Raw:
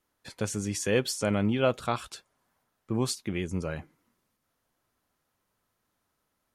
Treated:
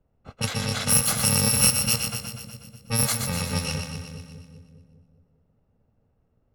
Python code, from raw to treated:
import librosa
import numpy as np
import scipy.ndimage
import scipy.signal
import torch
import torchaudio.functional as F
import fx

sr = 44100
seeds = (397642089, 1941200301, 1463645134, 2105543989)

y = fx.bit_reversed(x, sr, seeds[0], block=128)
y = fx.env_lowpass(y, sr, base_hz=560.0, full_db=-23.5)
y = fx.echo_split(y, sr, split_hz=450.0, low_ms=201, high_ms=122, feedback_pct=52, wet_db=-7)
y = fx.band_squash(y, sr, depth_pct=40)
y = y * librosa.db_to_amplitude(7.5)